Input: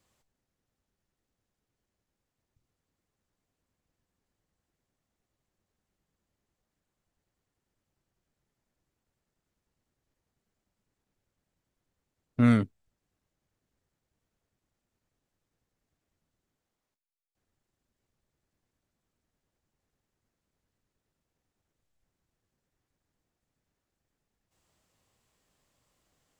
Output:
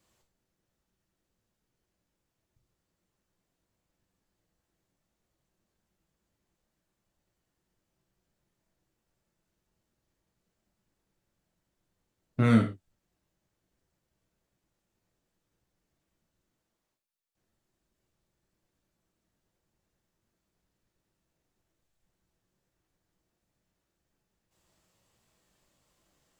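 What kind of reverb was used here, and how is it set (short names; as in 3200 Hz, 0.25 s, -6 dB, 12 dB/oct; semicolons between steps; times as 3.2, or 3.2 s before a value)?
non-linear reverb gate 0.14 s falling, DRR 2.5 dB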